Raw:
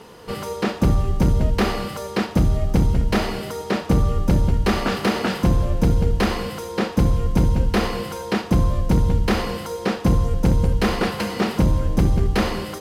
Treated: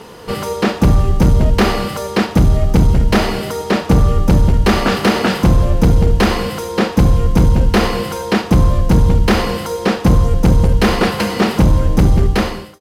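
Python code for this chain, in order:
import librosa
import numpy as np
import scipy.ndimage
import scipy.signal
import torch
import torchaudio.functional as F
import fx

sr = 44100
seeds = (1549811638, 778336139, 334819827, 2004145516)

y = fx.fade_out_tail(x, sr, length_s=0.58)
y = np.clip(10.0 ** (12.5 / 20.0) * y, -1.0, 1.0) / 10.0 ** (12.5 / 20.0)
y = y * librosa.db_to_amplitude(7.5)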